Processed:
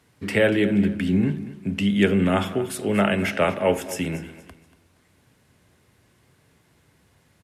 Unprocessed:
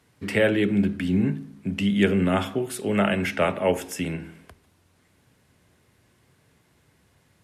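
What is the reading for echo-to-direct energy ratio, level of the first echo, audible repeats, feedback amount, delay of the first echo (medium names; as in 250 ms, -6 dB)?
-15.0 dB, -15.5 dB, 2, 31%, 236 ms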